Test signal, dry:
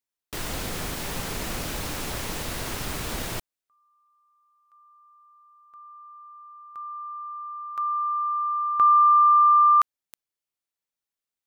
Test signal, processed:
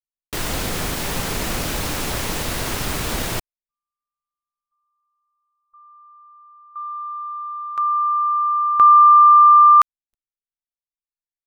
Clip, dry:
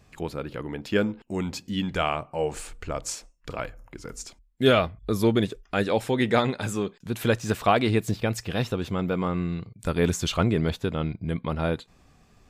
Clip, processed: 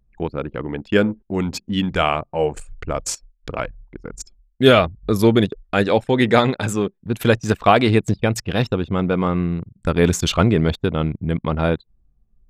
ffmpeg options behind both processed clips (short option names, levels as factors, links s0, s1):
-af "anlmdn=3.98,volume=2.24"